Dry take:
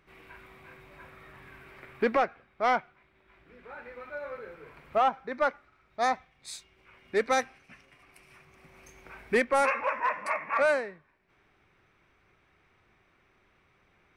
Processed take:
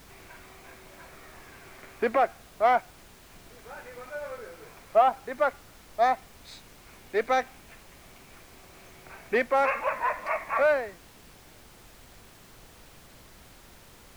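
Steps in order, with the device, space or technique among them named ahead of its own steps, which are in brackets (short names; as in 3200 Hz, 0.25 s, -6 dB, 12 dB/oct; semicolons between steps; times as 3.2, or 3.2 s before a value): horn gramophone (BPF 240–4000 Hz; bell 690 Hz +7.5 dB 0.31 oct; wow and flutter 22 cents; pink noise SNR 21 dB)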